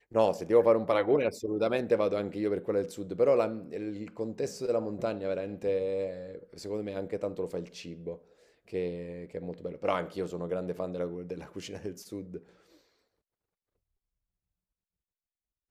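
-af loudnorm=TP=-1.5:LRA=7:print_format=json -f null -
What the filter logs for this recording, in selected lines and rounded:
"input_i" : "-31.3",
"input_tp" : "-11.5",
"input_lra" : "13.3",
"input_thresh" : "-42.0",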